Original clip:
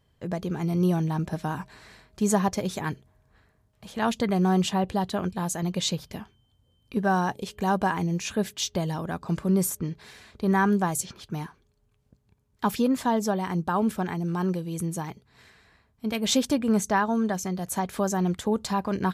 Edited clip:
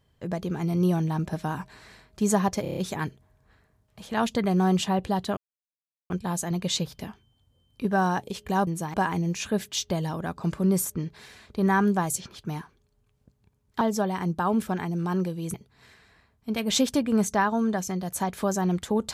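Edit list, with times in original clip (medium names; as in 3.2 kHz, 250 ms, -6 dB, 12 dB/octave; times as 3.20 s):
2.62 s: stutter 0.03 s, 6 plays
5.22 s: insert silence 0.73 s
12.66–13.10 s: delete
14.83–15.10 s: move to 7.79 s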